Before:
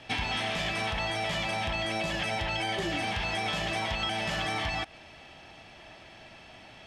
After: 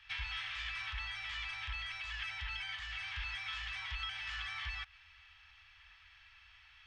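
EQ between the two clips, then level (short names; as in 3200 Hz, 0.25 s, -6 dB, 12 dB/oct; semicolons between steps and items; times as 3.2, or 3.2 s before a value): inverse Chebyshev band-stop 180–510 Hz, stop band 60 dB; tape spacing loss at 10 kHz 30 dB; high shelf 2500 Hz +9.5 dB; -5.0 dB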